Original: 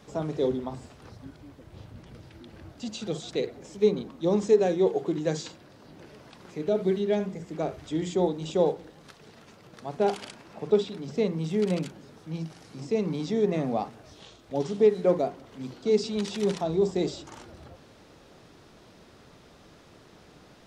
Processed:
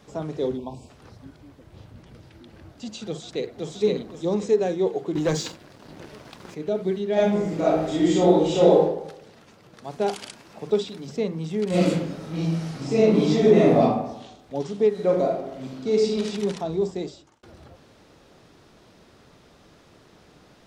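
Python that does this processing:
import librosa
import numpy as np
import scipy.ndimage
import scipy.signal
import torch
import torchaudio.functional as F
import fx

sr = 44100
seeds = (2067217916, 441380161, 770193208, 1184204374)

y = fx.spec_erase(x, sr, start_s=0.57, length_s=0.32, low_hz=1100.0, high_hz=2200.0)
y = fx.echo_throw(y, sr, start_s=3.06, length_s=0.64, ms=520, feedback_pct=25, wet_db=-1.0)
y = fx.leveller(y, sr, passes=2, at=(5.15, 6.55))
y = fx.reverb_throw(y, sr, start_s=7.13, length_s=1.68, rt60_s=0.8, drr_db=-9.0)
y = fx.high_shelf(y, sr, hz=3700.0, db=7.5, at=(9.84, 11.17))
y = fx.reverb_throw(y, sr, start_s=11.69, length_s=2.12, rt60_s=0.89, drr_db=-10.5)
y = fx.reverb_throw(y, sr, start_s=14.9, length_s=1.36, rt60_s=0.95, drr_db=-0.5)
y = fx.edit(y, sr, fx.fade_out_span(start_s=16.8, length_s=0.63), tone=tone)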